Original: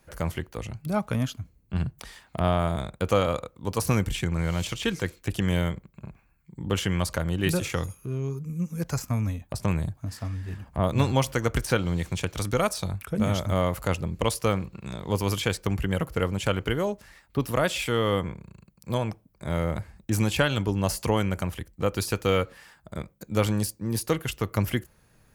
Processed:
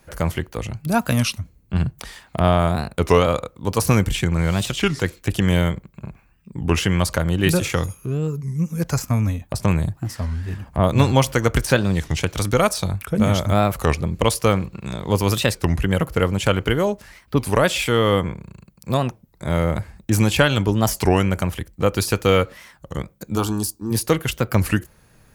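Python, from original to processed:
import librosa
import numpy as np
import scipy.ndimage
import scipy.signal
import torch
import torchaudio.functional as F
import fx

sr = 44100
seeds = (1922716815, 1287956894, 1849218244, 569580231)

y = fx.high_shelf(x, sr, hz=fx.line((0.9, 4500.0), (1.38, 2400.0)), db=11.0, at=(0.9, 1.38), fade=0.02)
y = fx.fixed_phaser(y, sr, hz=550.0, stages=6, at=(23.35, 23.9), fade=0.02)
y = fx.record_warp(y, sr, rpm=33.33, depth_cents=250.0)
y = F.gain(torch.from_numpy(y), 7.0).numpy()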